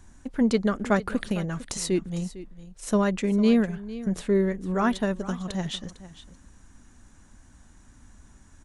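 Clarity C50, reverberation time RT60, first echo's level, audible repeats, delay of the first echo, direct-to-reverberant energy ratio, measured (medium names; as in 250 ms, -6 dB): no reverb, no reverb, -16.0 dB, 1, 453 ms, no reverb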